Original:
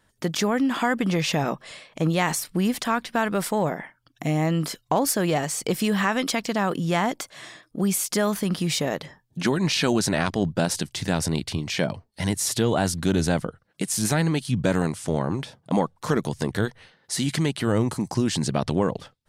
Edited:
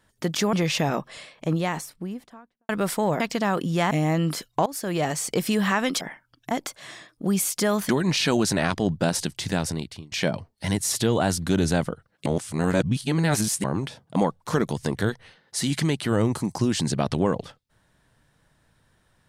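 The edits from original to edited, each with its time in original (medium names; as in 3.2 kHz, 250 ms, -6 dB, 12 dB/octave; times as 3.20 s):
0.53–1.07 s: delete
1.65–3.23 s: studio fade out
3.74–4.24 s: swap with 6.34–7.05 s
4.99–5.42 s: fade in, from -18.5 dB
8.43–9.45 s: delete
11.05–11.68 s: fade out, to -23.5 dB
13.82–15.20 s: reverse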